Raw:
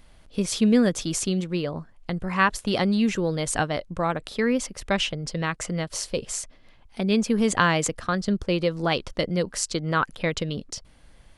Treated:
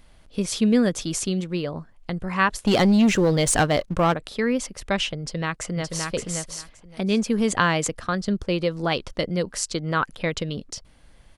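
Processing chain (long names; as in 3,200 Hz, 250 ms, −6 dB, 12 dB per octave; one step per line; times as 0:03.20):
0:02.65–0:04.14: leveller curve on the samples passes 2
0:05.19–0:06.12: delay throw 570 ms, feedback 15%, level −4 dB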